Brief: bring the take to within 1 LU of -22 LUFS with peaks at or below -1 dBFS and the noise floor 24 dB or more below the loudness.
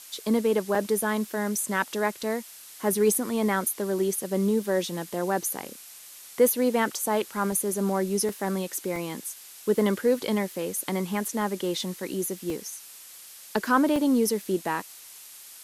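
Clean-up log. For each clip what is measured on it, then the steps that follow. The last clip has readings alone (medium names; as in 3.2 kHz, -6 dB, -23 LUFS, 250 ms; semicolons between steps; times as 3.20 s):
dropouts 8; longest dropout 2.0 ms; noise floor -47 dBFS; noise floor target -51 dBFS; loudness -26.5 LUFS; peak level -9.5 dBFS; loudness target -22.0 LUFS
-> interpolate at 0.75/2.23/3.15/7.52/8.29/8.96/12.50/13.96 s, 2 ms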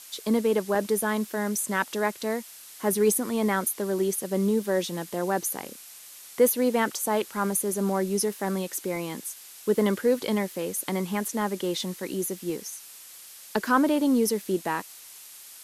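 dropouts 0; noise floor -47 dBFS; noise floor target -51 dBFS
-> noise reduction 6 dB, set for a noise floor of -47 dBFS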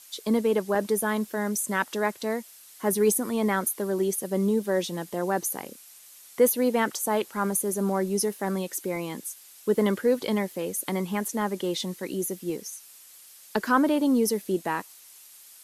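noise floor -50 dBFS; noise floor target -51 dBFS
-> noise reduction 6 dB, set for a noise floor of -50 dBFS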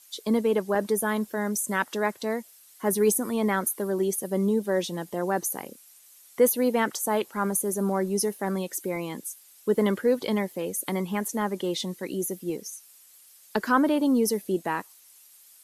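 noise floor -54 dBFS; loudness -27.0 LUFS; peak level -9.5 dBFS; loudness target -22.0 LUFS
-> trim +5 dB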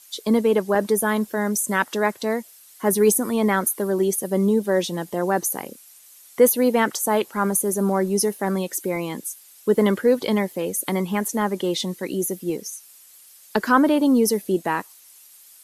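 loudness -22.0 LUFS; peak level -4.5 dBFS; noise floor -49 dBFS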